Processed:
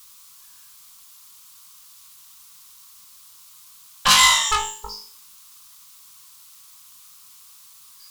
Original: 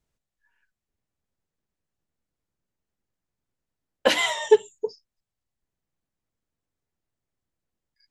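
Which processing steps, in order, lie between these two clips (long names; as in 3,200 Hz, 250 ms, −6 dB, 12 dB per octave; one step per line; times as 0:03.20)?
flutter between parallel walls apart 3.3 metres, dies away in 0.47 s
bit-depth reduction 10 bits, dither triangular
harmonic generator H 5 −14 dB, 6 −16 dB, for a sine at −4 dBFS
drawn EQ curve 210 Hz 0 dB, 300 Hz −29 dB, 620 Hz −17 dB, 1,100 Hz +12 dB, 1,700 Hz −2 dB, 3,700 Hz +9 dB, 7,000 Hz +11 dB
level −4 dB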